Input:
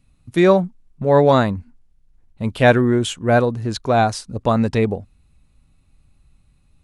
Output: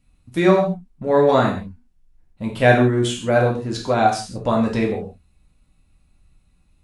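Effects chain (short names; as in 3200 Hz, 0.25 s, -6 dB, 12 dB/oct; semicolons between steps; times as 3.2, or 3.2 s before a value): non-linear reverb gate 0.19 s falling, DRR -2 dB; gain -4.5 dB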